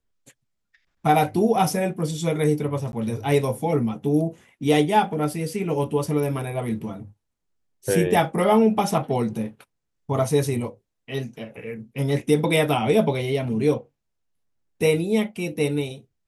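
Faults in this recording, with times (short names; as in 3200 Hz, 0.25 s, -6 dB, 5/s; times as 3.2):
2.92–2.93 gap 11 ms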